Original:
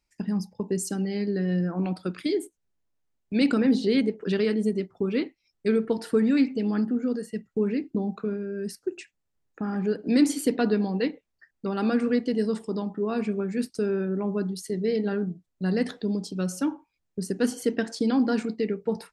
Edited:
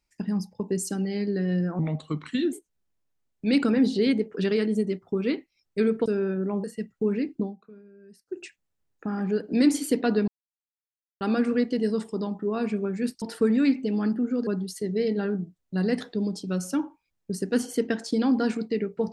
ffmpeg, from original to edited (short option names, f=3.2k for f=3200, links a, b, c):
-filter_complex "[0:a]asplit=11[a][b][c][d][e][f][g][h][i][j][k];[a]atrim=end=1.794[l];[b]atrim=start=1.79:end=2.41,asetpts=PTS-STARTPTS,asetrate=37044,aresample=44100[m];[c]atrim=start=2.406:end=5.942[n];[d]atrim=start=13.768:end=14.352[o];[e]atrim=start=7.188:end=8.1,asetpts=PTS-STARTPTS,afade=t=out:st=0.772:d=0.14:silence=0.112202[p];[f]atrim=start=8.1:end=8.81,asetpts=PTS-STARTPTS,volume=-19dB[q];[g]atrim=start=8.81:end=10.83,asetpts=PTS-STARTPTS,afade=t=in:d=0.14:silence=0.112202,afade=t=out:st=2.016:d=0.004:c=hsin[r];[h]atrim=start=10.83:end=11.76,asetpts=PTS-STARTPTS,volume=0[s];[i]atrim=start=11.76:end=13.772,asetpts=PTS-STARTPTS,afade=t=in:d=0.004:c=hsin[t];[j]atrim=start=5.938:end=7.192[u];[k]atrim=start=14.348[v];[l][m]acrossfade=d=0.004:c1=hsin:c2=hsin[w];[w][n]acrossfade=d=0.004:c1=hsin:c2=hsin[x];[x][o]acrossfade=d=0.004:c1=hsin:c2=hsin[y];[p][q][r][s][t]concat=n=5:v=0:a=1[z];[y][z]acrossfade=d=0.004:c1=hsin:c2=hsin[aa];[aa][u]acrossfade=d=0.004:c1=hsin:c2=hsin[ab];[ab][v]acrossfade=d=0.004:c1=hsin:c2=hsin"